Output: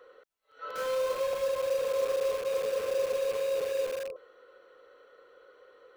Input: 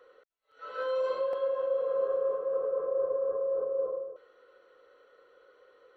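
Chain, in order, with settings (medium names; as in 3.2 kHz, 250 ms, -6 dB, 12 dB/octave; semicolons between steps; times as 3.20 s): rattle on loud lows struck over -54 dBFS, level -37 dBFS; in parallel at -7 dB: integer overflow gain 34 dB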